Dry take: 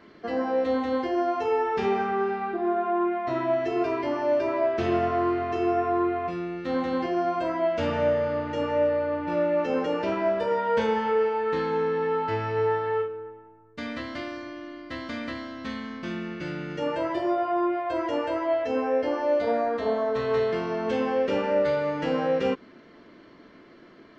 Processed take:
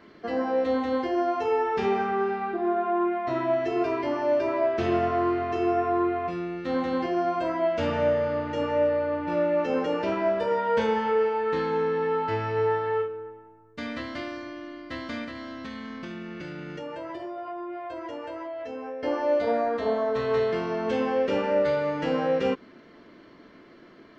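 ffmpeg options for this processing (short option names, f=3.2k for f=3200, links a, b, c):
-filter_complex "[0:a]asettb=1/sr,asplit=3[a][b][c];[a]atrim=end=15.244[d];[b]atrim=start=15.24:end=19.03,asetpts=PTS-STARTPTS,afade=t=in:d=0.004:c=qsin,afade=t=out:st=3.786:d=0.004:c=qsin,acompressor=threshold=-33dB:ratio=6:attack=3.2:release=140:knee=1:detection=peak[e];[c]atrim=start=19.026[f];[d][e]acrossfade=d=0.004:c1=hsin:c2=qsin[g];[g][f]acrossfade=d=0.004:c1=qsin:c2=hsin"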